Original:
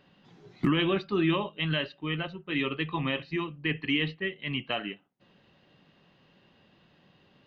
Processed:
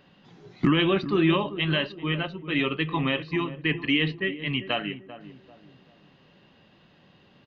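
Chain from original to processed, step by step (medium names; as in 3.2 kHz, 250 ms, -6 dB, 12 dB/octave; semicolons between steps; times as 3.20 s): on a send: filtered feedback delay 392 ms, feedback 41%, low-pass 810 Hz, level -11.5 dB; on the sum: resampled via 16 kHz; trim +4 dB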